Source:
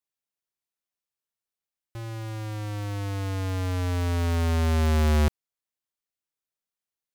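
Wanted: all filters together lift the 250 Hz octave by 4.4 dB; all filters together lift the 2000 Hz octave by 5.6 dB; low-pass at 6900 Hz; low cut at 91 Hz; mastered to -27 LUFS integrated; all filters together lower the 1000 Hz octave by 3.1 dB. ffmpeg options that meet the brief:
-af "highpass=91,lowpass=6.9k,equalizer=f=250:t=o:g=5,equalizer=f=1k:t=o:g=-7,equalizer=f=2k:t=o:g=9,volume=0.5dB"

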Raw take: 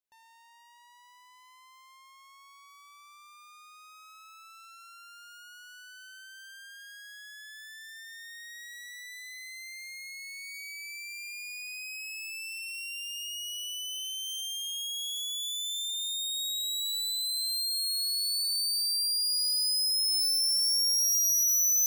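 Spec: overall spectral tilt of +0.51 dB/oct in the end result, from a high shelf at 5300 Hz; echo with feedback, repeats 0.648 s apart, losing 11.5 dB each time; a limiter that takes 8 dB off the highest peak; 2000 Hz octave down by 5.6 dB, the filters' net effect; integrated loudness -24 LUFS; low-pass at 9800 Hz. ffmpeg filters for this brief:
-af "lowpass=9.8k,equalizer=f=2k:t=o:g=-8.5,highshelf=f=5.3k:g=4,alimiter=level_in=3.5dB:limit=-24dB:level=0:latency=1,volume=-3.5dB,aecho=1:1:648|1296|1944:0.266|0.0718|0.0194,volume=8dB"

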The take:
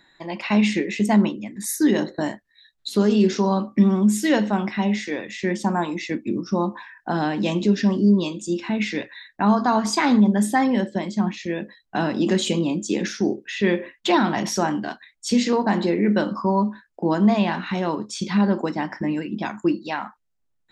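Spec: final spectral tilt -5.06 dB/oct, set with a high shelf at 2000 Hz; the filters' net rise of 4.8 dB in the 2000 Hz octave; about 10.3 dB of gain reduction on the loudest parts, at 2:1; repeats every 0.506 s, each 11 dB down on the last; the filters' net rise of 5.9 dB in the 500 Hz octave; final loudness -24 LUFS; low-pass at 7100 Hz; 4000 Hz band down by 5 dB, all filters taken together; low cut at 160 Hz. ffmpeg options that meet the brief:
-af "highpass=160,lowpass=7.1k,equalizer=f=500:t=o:g=8,highshelf=f=2k:g=-4.5,equalizer=f=2k:t=o:g=9,equalizer=f=4k:t=o:g=-5.5,acompressor=threshold=-30dB:ratio=2,aecho=1:1:506|1012|1518:0.282|0.0789|0.0221,volume=4dB"

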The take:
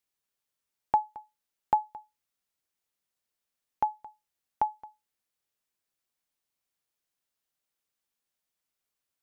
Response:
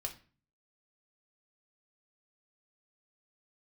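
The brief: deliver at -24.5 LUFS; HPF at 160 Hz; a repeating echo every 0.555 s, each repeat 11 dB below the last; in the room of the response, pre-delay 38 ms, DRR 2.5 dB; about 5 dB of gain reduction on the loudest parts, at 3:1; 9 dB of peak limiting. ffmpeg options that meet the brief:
-filter_complex "[0:a]highpass=160,acompressor=threshold=-26dB:ratio=3,alimiter=limit=-22dB:level=0:latency=1,aecho=1:1:555|1110|1665:0.282|0.0789|0.0221,asplit=2[a][b];[1:a]atrim=start_sample=2205,adelay=38[c];[b][c]afir=irnorm=-1:irlink=0,volume=-1.5dB[d];[a][d]amix=inputs=2:normalize=0,volume=18.5dB"

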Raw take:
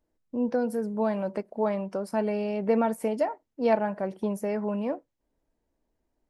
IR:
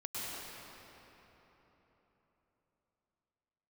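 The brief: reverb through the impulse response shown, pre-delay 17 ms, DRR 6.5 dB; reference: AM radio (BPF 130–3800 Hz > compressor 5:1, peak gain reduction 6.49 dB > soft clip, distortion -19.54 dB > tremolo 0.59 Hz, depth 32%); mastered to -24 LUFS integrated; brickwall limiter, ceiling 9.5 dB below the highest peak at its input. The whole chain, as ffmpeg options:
-filter_complex "[0:a]alimiter=limit=-21dB:level=0:latency=1,asplit=2[a][b];[1:a]atrim=start_sample=2205,adelay=17[c];[b][c]afir=irnorm=-1:irlink=0,volume=-9.5dB[d];[a][d]amix=inputs=2:normalize=0,highpass=130,lowpass=3.8k,acompressor=threshold=-29dB:ratio=5,asoftclip=threshold=-25.5dB,tremolo=f=0.59:d=0.32,volume=13.5dB"

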